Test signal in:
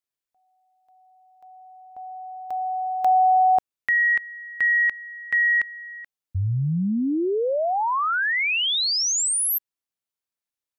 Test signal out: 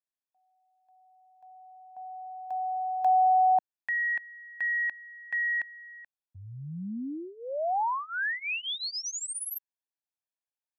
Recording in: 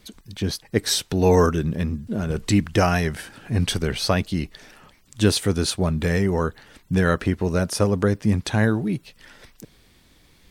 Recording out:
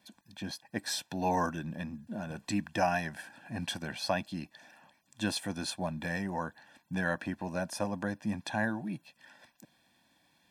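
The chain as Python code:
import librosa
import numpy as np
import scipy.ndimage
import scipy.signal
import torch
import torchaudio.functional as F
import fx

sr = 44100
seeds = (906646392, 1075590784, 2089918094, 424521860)

y = scipy.signal.sosfilt(scipy.signal.butter(2, 280.0, 'highpass', fs=sr, output='sos'), x)
y = fx.high_shelf(y, sr, hz=2100.0, db=-7.5)
y = y + 0.9 * np.pad(y, (int(1.2 * sr / 1000.0), 0))[:len(y)]
y = y * librosa.db_to_amplitude(-8.5)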